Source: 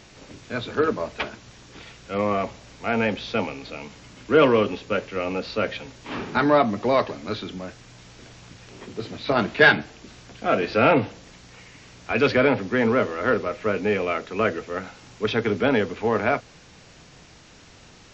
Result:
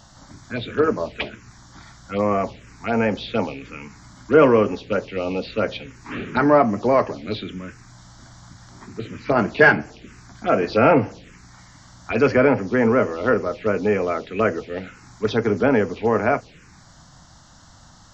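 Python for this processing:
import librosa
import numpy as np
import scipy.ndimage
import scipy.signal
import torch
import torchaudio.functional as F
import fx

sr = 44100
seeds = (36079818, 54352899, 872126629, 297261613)

y = fx.env_phaser(x, sr, low_hz=380.0, high_hz=3700.0, full_db=-19.0)
y = y * 10.0 ** (3.5 / 20.0)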